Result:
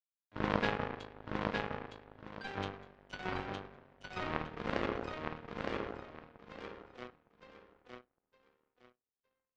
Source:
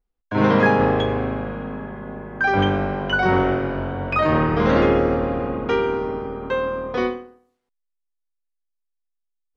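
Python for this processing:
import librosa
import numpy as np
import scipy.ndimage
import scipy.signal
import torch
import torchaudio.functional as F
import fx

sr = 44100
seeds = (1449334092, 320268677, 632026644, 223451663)

p1 = fx.power_curve(x, sr, exponent=3.0)
p2 = p1 + fx.echo_feedback(p1, sr, ms=912, feedback_pct=24, wet_db=-3.5, dry=0)
y = p2 * 10.0 ** (-6.5 / 20.0)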